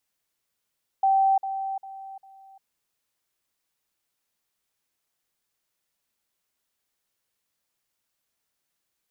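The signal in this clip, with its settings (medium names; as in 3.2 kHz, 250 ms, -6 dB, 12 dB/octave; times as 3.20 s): level ladder 776 Hz -17 dBFS, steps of -10 dB, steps 4, 0.35 s 0.05 s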